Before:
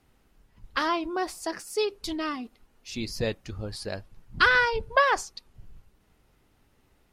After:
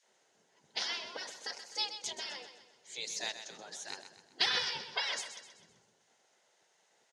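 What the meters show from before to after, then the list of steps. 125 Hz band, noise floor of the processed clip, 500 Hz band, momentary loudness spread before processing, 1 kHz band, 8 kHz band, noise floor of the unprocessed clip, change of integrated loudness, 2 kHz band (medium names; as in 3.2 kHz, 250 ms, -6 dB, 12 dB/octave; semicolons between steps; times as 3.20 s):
-24.5 dB, -72 dBFS, -19.0 dB, 17 LU, -17.0 dB, -1.0 dB, -66 dBFS, -9.0 dB, -14.0 dB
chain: spectral gate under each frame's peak -15 dB weak; cabinet simulation 270–8300 Hz, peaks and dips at 290 Hz -8 dB, 1.2 kHz -10 dB, 2.5 kHz -6 dB, 6.5 kHz +9 dB; feedback delay 128 ms, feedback 46%, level -10.5 dB; trim +1.5 dB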